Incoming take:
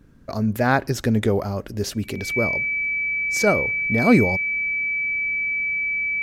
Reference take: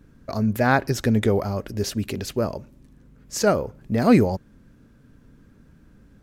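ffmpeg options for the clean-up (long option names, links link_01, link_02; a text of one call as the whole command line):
ffmpeg -i in.wav -af "bandreject=frequency=2300:width=30" out.wav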